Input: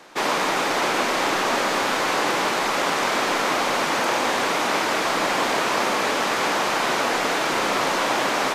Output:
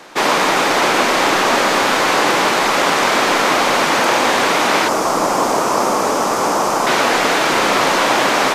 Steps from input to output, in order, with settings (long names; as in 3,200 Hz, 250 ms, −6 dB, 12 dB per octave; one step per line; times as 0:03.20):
0:04.88–0:06.87: flat-topped bell 2,600 Hz −10.5 dB
level +7.5 dB